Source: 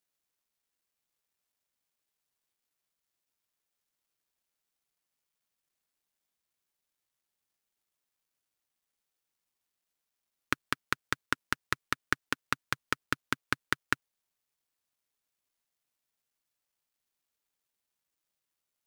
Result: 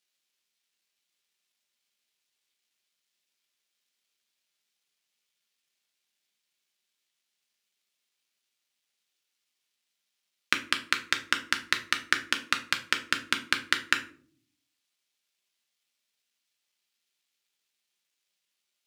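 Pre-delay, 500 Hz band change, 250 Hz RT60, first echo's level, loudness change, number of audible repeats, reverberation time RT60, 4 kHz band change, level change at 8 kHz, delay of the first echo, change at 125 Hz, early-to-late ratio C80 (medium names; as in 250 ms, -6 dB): 5 ms, -1.0 dB, 0.90 s, no echo, +5.5 dB, no echo, 0.50 s, +10.5 dB, +5.5 dB, no echo, -6.5 dB, 17.5 dB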